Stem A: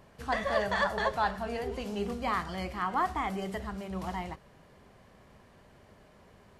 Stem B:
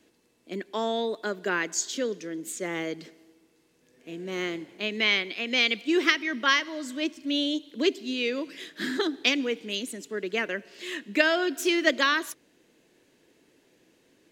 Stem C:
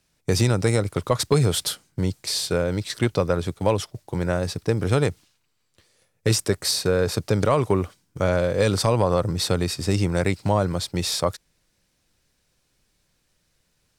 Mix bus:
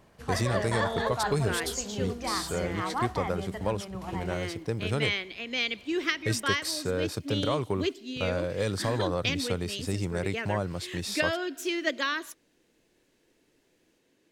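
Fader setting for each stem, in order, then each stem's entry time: -2.0, -6.0, -9.0 dB; 0.00, 0.00, 0.00 s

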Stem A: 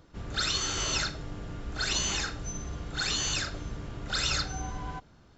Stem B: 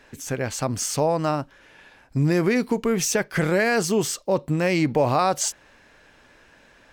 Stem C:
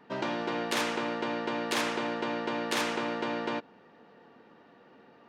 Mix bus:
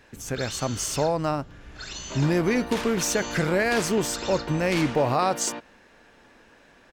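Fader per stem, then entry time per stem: -8.0, -2.5, -3.0 dB; 0.00, 0.00, 2.00 s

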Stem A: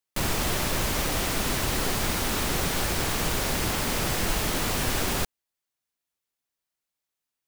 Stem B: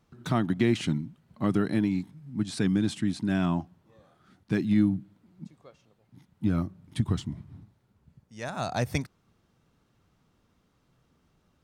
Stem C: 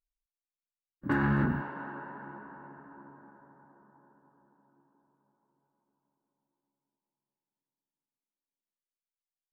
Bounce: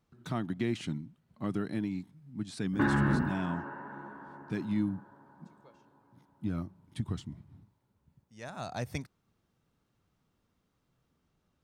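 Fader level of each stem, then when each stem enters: off, -8.0 dB, 0.0 dB; off, 0.00 s, 1.70 s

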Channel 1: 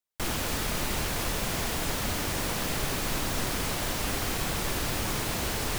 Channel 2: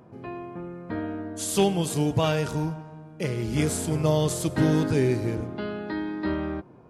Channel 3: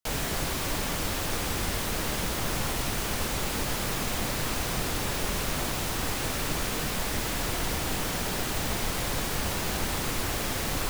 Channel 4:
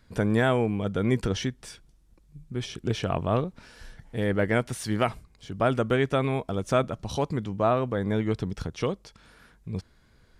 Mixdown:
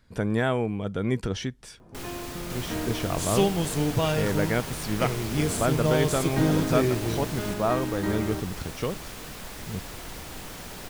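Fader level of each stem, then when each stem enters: -8.5, -1.5, -9.5, -2.0 dB; 1.75, 1.80, 2.45, 0.00 s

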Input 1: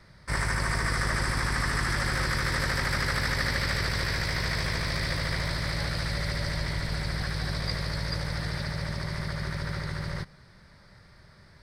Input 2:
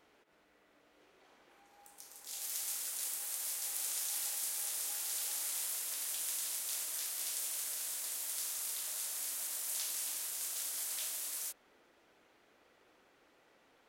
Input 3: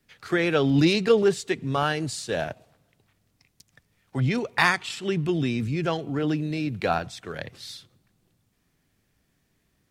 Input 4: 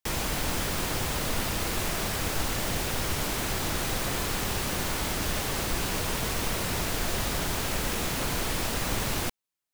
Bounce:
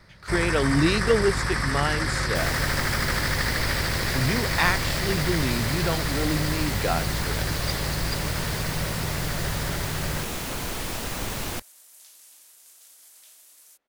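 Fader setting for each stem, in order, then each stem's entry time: +1.5, -12.5, -2.0, -1.5 dB; 0.00, 2.25, 0.00, 2.30 s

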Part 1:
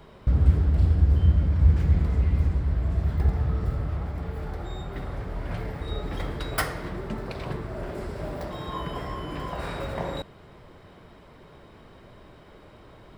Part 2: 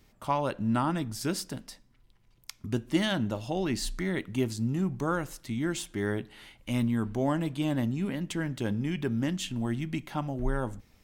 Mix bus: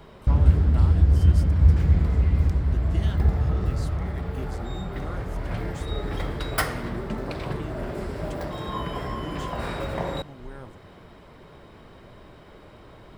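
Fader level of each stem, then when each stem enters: +2.0, -11.5 dB; 0.00, 0.00 s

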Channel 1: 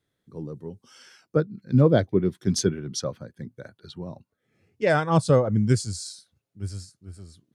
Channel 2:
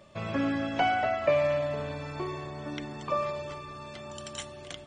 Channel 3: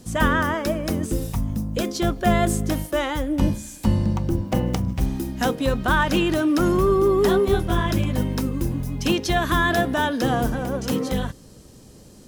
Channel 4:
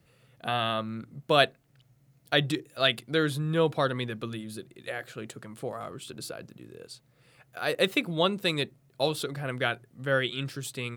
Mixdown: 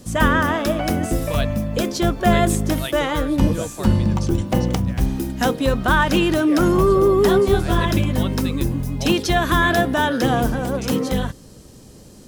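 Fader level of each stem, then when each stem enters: -10.5, -3.5, +3.0, -6.5 dB; 1.65, 0.00, 0.00, 0.00 s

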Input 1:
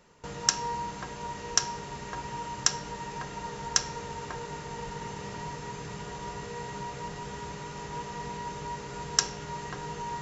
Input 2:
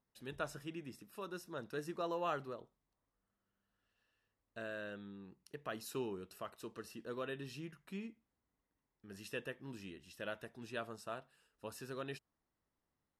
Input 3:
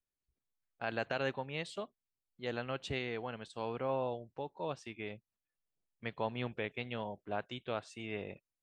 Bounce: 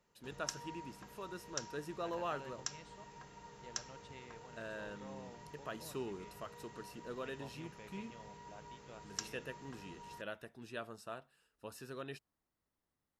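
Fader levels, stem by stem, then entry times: -17.0, -1.5, -17.5 dB; 0.00, 0.00, 1.20 s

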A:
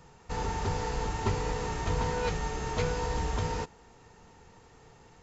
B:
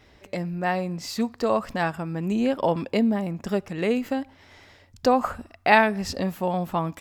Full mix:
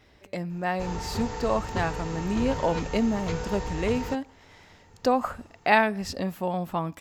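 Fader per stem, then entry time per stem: -2.0, -3.0 dB; 0.50, 0.00 s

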